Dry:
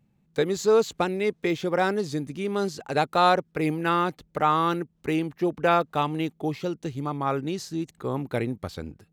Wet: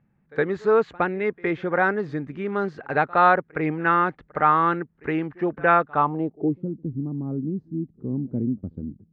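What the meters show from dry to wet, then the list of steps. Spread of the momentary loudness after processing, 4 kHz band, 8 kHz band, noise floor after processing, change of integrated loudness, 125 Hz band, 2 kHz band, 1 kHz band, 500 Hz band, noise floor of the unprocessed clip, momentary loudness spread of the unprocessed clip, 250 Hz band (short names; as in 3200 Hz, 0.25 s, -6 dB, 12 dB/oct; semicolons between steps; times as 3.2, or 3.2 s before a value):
12 LU, under -10 dB, under -25 dB, -65 dBFS, +2.5 dB, +1.5 dB, +6.0 dB, +3.5 dB, +0.5 dB, -67 dBFS, 10 LU, +1.5 dB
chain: pre-echo 65 ms -24 dB; low-pass sweep 1700 Hz -> 240 Hz, 5.9–6.63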